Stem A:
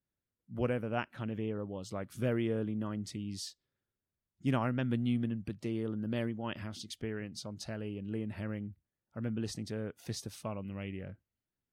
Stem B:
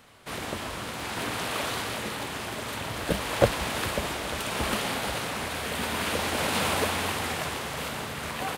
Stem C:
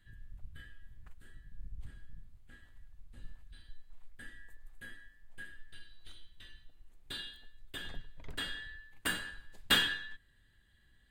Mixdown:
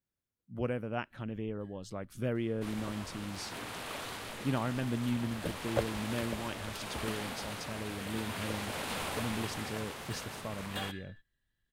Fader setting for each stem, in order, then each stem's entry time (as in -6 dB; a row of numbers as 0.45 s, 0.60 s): -1.5 dB, -10.5 dB, -14.5 dB; 0.00 s, 2.35 s, 1.05 s